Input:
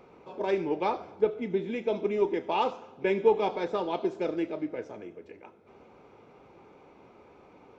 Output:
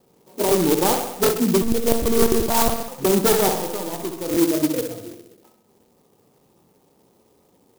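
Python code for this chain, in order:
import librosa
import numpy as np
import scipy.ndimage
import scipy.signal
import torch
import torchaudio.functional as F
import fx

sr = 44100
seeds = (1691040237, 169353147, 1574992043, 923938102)

y = fx.tracing_dist(x, sr, depth_ms=0.15)
y = fx.noise_reduce_blind(y, sr, reduce_db=18)
y = scipy.signal.sosfilt(scipy.signal.butter(16, 1300.0, 'lowpass', fs=sr, output='sos'), y)
y = fx.peak_eq(y, sr, hz=180.0, db=5.5, octaves=1.6)
y = fx.fold_sine(y, sr, drive_db=9, ceiling_db=-10.5)
y = fx.comb_fb(y, sr, f0_hz=84.0, decay_s=1.5, harmonics='all', damping=0.0, mix_pct=70, at=(3.53, 4.3), fade=0.02)
y = fx.echo_feedback(y, sr, ms=65, feedback_pct=60, wet_db=-6.5)
y = fx.lpc_monotone(y, sr, seeds[0], pitch_hz=230.0, order=8, at=(1.62, 2.88))
y = fx.buffer_crackle(y, sr, first_s=0.47, period_s=0.77, block=1024, kind='repeat')
y = fx.clock_jitter(y, sr, seeds[1], jitter_ms=0.13)
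y = y * 10.0 ** (-2.0 / 20.0)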